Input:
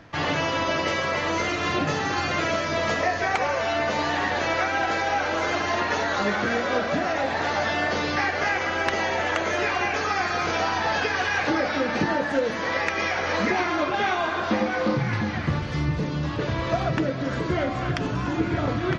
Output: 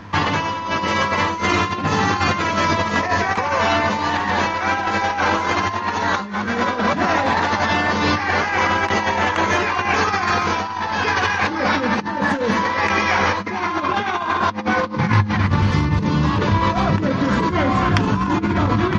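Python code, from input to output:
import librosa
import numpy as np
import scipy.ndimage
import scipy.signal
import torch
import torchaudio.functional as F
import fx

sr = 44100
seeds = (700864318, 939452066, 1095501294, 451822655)

y = fx.graphic_eq_31(x, sr, hz=(125, 200, 630, 1000), db=(-8, 11, -6, 10))
y = fx.over_compress(y, sr, threshold_db=-25.0, ratio=-0.5)
y = fx.peak_eq(y, sr, hz=100.0, db=13.5, octaves=0.21)
y = y * 10.0 ** (6.0 / 20.0)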